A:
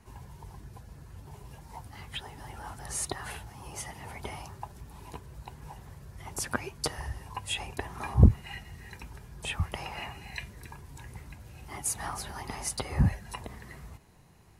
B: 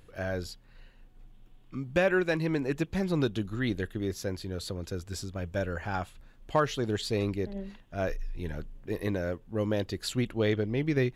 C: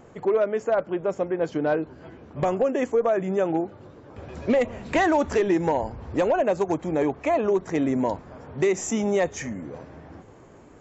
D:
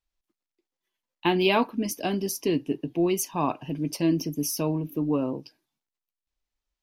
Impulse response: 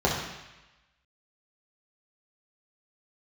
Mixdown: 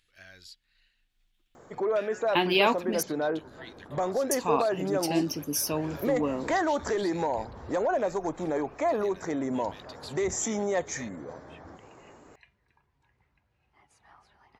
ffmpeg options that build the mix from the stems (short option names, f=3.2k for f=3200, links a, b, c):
-filter_complex "[0:a]lowpass=3.2k,adelay=2050,volume=-18.5dB[a];[1:a]equalizer=f=125:t=o:w=1:g=-5,equalizer=f=250:t=o:w=1:g=-4,equalizer=f=500:t=o:w=1:g=-11,equalizer=f=1k:t=o:w=1:g=-8,equalizer=f=2k:t=o:w=1:g=5,equalizer=f=4k:t=o:w=1:g=8,equalizer=f=8k:t=o:w=1:g=3,acompressor=threshold=-33dB:ratio=3,volume=-10.5dB[b];[2:a]equalizer=f=2.7k:w=2.9:g=-14.5,alimiter=limit=-18.5dB:level=0:latency=1:release=28,adelay=1550,volume=1.5dB[c];[3:a]adelay=1100,volume=1.5dB,asplit=3[d][e][f];[d]atrim=end=3.03,asetpts=PTS-STARTPTS,afade=t=out:st=3.026:d=0.004:c=hsin[g];[e]atrim=start=3.03:end=4.31,asetpts=PTS-STARTPTS,volume=0[h];[f]atrim=start=4.31,asetpts=PTS-STARTPTS,afade=t=in:d=0.004:c=hsin[i];[g][h][i]concat=n=3:v=0:a=1[j];[a][b][c][j]amix=inputs=4:normalize=0,lowshelf=f=390:g=-9.5"